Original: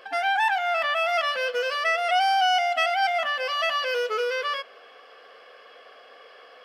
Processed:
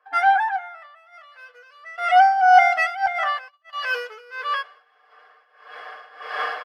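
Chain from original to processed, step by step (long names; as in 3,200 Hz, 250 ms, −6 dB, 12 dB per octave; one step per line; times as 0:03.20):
camcorder AGC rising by 11 dB per second
high-pass filter 240 Hz 12 dB per octave
flat-topped bell 1,200 Hz +10.5 dB
single-tap delay 204 ms −20 dB
shaped tremolo triangle 1.6 Hz, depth 75%
0:00.56–0:01.98: downward compressor 8 to 1, threshold −28 dBFS, peak gain reduction 13 dB
comb filter 6.6 ms, depth 90%
0:03.06–0:03.73: noise gate −21 dBFS, range −29 dB
multiband upward and downward expander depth 100%
level −5 dB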